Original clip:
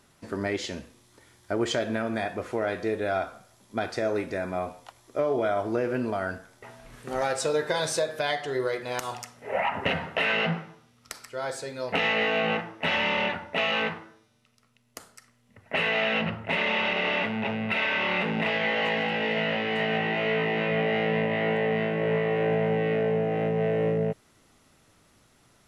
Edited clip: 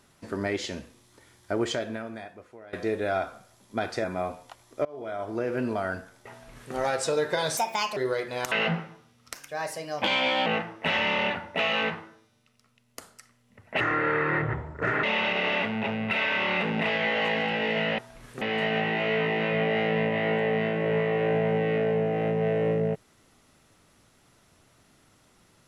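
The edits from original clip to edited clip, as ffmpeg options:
ffmpeg -i in.wav -filter_complex "[0:a]asplit=13[link_01][link_02][link_03][link_04][link_05][link_06][link_07][link_08][link_09][link_10][link_11][link_12][link_13];[link_01]atrim=end=2.73,asetpts=PTS-STARTPTS,afade=type=out:start_time=1.58:duration=1.15:curve=qua:silence=0.1[link_14];[link_02]atrim=start=2.73:end=4.042,asetpts=PTS-STARTPTS,afade=type=in:duration=0.004:curve=hsin:silence=0.1[link_15];[link_03]atrim=start=4.408:end=5.22,asetpts=PTS-STARTPTS,afade=type=out:start_time=0.808:duration=0.004:curve=hsin:silence=0.0668344[link_16];[link_04]atrim=start=5.22:end=7.944,asetpts=PTS-STARTPTS,afade=type=in:duration=0.78:silence=0.0668344[link_17];[link_05]atrim=start=7.94:end=8.51,asetpts=PTS-STARTPTS,asetrate=63504,aresample=44100,atrim=end_sample=17456,asetpts=PTS-STARTPTS[link_18];[link_06]atrim=start=8.506:end=9.062[link_19];[link_07]atrim=start=10.298:end=11.124[link_20];[link_08]atrim=start=11.12:end=12.45,asetpts=PTS-STARTPTS,asetrate=52038,aresample=44100[link_21];[link_09]atrim=start=12.446:end=15.794[link_22];[link_10]atrim=start=15.79:end=16.64,asetpts=PTS-STARTPTS,asetrate=30429,aresample=44100,atrim=end_sample=54326,asetpts=PTS-STARTPTS[link_23];[link_11]atrim=start=16.636:end=19.592[link_24];[link_12]atrim=start=6.678:end=7.112[link_25];[link_13]atrim=start=19.588[link_26];[link_14][link_15]concat=n=2:v=0:a=1[link_27];[link_16][link_17]concat=n=2:v=0:a=1[link_28];[link_27][link_28]acrossfade=duration=0.004:curve1=hsin:curve2=hsin[link_29];[link_29][link_18]acrossfade=duration=0.004:curve1=hsin:curve2=hsin[link_30];[link_30][link_19]acrossfade=duration=0.004:curve1=hsin:curve2=hsin[link_31];[link_31][link_20]acrossfade=duration=0.004:curve1=hsin:curve2=hsin[link_32];[link_32][link_21]acrossfade=duration=0.004:curve1=hsin:curve2=hsin[link_33];[link_33][link_22]acrossfade=duration=0.004:curve1=hsin:curve2=hsin[link_34];[link_34][link_23]acrossfade=duration=0.004:curve1=hsin:curve2=hsin[link_35];[link_35][link_24]acrossfade=duration=0.004:curve1=hsin:curve2=hsin[link_36];[link_36][link_25]acrossfade=duration=0.004:curve1=hsin:curve2=hsin[link_37];[link_37][link_26]acrossfade=duration=0.004:curve1=hsin:curve2=hsin" out.wav

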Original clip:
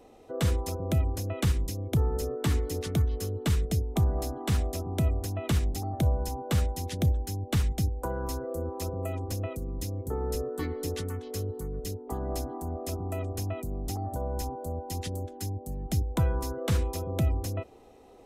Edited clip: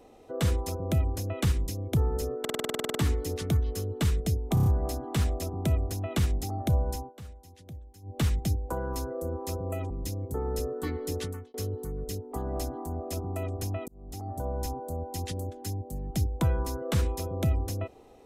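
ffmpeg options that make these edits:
ffmpeg -i in.wav -filter_complex "[0:a]asplit=21[link_01][link_02][link_03][link_04][link_05][link_06][link_07][link_08][link_09][link_10][link_11][link_12][link_13][link_14][link_15][link_16][link_17][link_18][link_19][link_20][link_21];[link_01]atrim=end=2.452[link_22];[link_02]atrim=start=2.398:end=2.452[link_23];[link_03]atrim=start=2.398:end=2.452[link_24];[link_04]atrim=start=2.398:end=2.452[link_25];[link_05]atrim=start=2.398:end=2.452[link_26];[link_06]atrim=start=2.398:end=2.452[link_27];[link_07]atrim=start=2.398:end=2.452[link_28];[link_08]atrim=start=2.398:end=2.452[link_29];[link_09]atrim=start=2.398:end=2.452[link_30];[link_10]atrim=start=2.398:end=2.452[link_31];[link_11]atrim=start=2.398:end=2.452[link_32];[link_12]atrim=start=2.398:end=4.022[link_33];[link_13]atrim=start=3.988:end=4.022[link_34];[link_14]atrim=start=3.988:end=4.022[link_35];[link_15]atrim=start=3.988:end=4.022[link_36];[link_16]atrim=start=3.988:end=6.46,asetpts=PTS-STARTPTS,afade=type=out:start_time=2.222:duration=0.25:curve=qsin:silence=0.11885[link_37];[link_17]atrim=start=6.46:end=7.35,asetpts=PTS-STARTPTS,volume=-18.5dB[link_38];[link_18]atrim=start=7.35:end=9.232,asetpts=PTS-STARTPTS,afade=type=in:duration=0.25:curve=qsin:silence=0.11885[link_39];[link_19]atrim=start=9.658:end=11.3,asetpts=PTS-STARTPTS,afade=type=out:start_time=1.352:duration=0.29[link_40];[link_20]atrim=start=11.3:end=13.64,asetpts=PTS-STARTPTS,afade=type=in:duration=0.004:curve=hsin,afade=type=out:start_time=2.336:duration=0.004:curve=hsin[link_41];[link_21]atrim=start=13.64,asetpts=PTS-STARTPTS,afade=type=in:duration=0.57[link_42];[link_22][link_23]acrossfade=duration=0.004:curve1=hsin:curve2=hsin[link_43];[link_43][link_24]acrossfade=duration=0.004:curve1=hsin:curve2=hsin[link_44];[link_44][link_25]acrossfade=duration=0.004:curve1=hsin:curve2=hsin[link_45];[link_45][link_26]acrossfade=duration=0.004:curve1=hsin:curve2=hsin[link_46];[link_46][link_27]acrossfade=duration=0.004:curve1=hsin:curve2=hsin[link_47];[link_47][link_28]acrossfade=duration=0.004:curve1=hsin:curve2=hsin[link_48];[link_48][link_29]acrossfade=duration=0.004:curve1=hsin:curve2=hsin[link_49];[link_49][link_30]acrossfade=duration=0.004:curve1=hsin:curve2=hsin[link_50];[link_50][link_31]acrossfade=duration=0.004:curve1=hsin:curve2=hsin[link_51];[link_51][link_32]acrossfade=duration=0.004:curve1=hsin:curve2=hsin[link_52];[link_52][link_33]acrossfade=duration=0.004:curve1=hsin:curve2=hsin[link_53];[link_53][link_34]acrossfade=duration=0.004:curve1=hsin:curve2=hsin[link_54];[link_54][link_35]acrossfade=duration=0.004:curve1=hsin:curve2=hsin[link_55];[link_55][link_36]acrossfade=duration=0.004:curve1=hsin:curve2=hsin[link_56];[link_37][link_38][link_39]concat=n=3:v=0:a=1[link_57];[link_56][link_57]acrossfade=duration=0.004:curve1=hsin:curve2=hsin[link_58];[link_40][link_41][link_42]concat=n=3:v=0:a=1[link_59];[link_58][link_59]acrossfade=duration=0.004:curve1=hsin:curve2=hsin" out.wav

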